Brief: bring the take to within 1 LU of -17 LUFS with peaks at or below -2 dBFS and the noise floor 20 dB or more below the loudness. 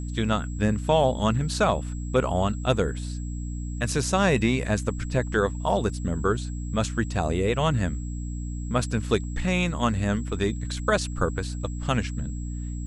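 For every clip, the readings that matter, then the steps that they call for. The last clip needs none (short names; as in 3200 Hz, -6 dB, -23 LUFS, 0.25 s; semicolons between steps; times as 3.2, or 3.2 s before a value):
hum 60 Hz; harmonics up to 300 Hz; hum level -29 dBFS; steady tone 7700 Hz; tone level -47 dBFS; loudness -26.0 LUFS; peak -8.0 dBFS; loudness target -17.0 LUFS
-> de-hum 60 Hz, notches 5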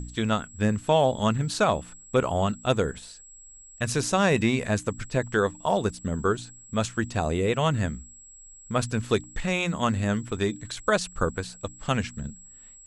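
hum none; steady tone 7700 Hz; tone level -47 dBFS
-> notch 7700 Hz, Q 30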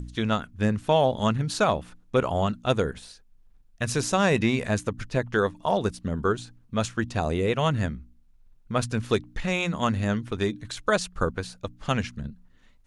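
steady tone none; loudness -26.5 LUFS; peak -8.5 dBFS; loudness target -17.0 LUFS
-> gain +9.5 dB; limiter -2 dBFS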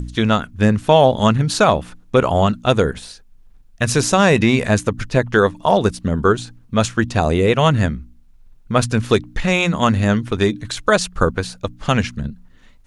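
loudness -17.5 LUFS; peak -2.0 dBFS; noise floor -48 dBFS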